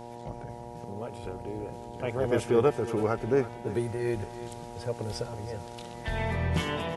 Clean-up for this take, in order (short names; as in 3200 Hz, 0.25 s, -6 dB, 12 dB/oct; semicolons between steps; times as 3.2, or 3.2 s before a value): de-hum 118.9 Hz, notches 8; inverse comb 0.328 s -14.5 dB